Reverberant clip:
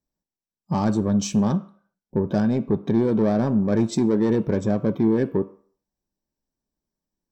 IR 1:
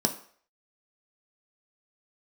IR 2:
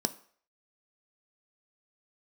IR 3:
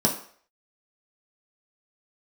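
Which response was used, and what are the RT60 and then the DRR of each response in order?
2; 0.50, 0.50, 0.50 seconds; 3.5, 9.5, −2.0 decibels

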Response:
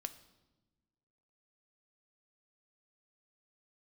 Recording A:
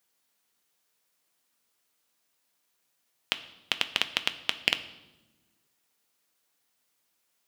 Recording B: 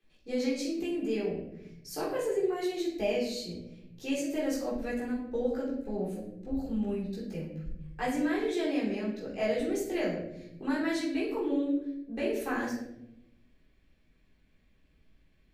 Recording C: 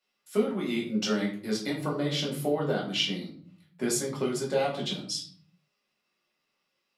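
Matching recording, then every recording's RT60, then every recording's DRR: A; non-exponential decay, 0.85 s, 0.50 s; 9.5, −6.5, −3.5 decibels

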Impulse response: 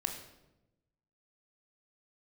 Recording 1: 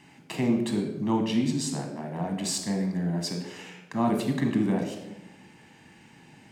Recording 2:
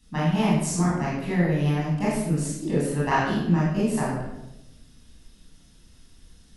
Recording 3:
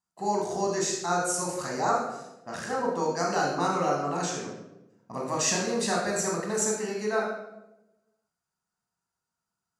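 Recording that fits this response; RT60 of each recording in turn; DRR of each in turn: 1; 0.95, 0.95, 0.95 seconds; 3.5, −8.0, −2.0 decibels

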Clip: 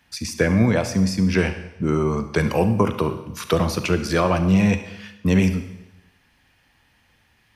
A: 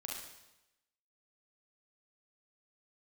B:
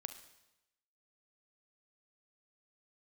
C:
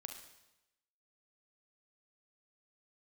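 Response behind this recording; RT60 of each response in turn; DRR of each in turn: B; 0.95, 0.95, 0.95 seconds; −2.5, 9.0, 4.0 decibels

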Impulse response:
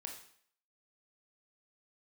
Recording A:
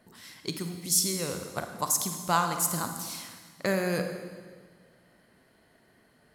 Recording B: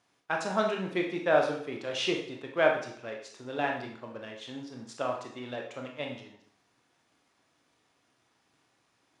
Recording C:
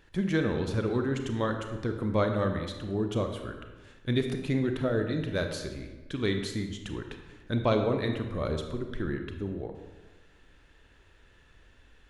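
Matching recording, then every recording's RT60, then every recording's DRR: B; 1.7, 0.60, 1.2 seconds; 5.5, 1.0, 5.0 decibels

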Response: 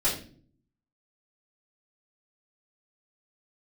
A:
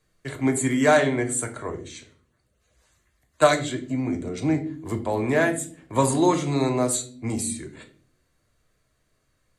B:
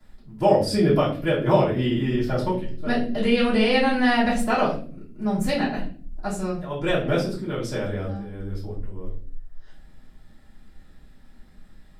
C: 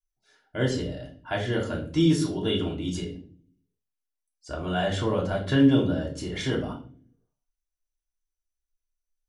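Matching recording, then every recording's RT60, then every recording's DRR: B; non-exponential decay, non-exponential decay, non-exponential decay; 5.0, −12.0, −2.0 decibels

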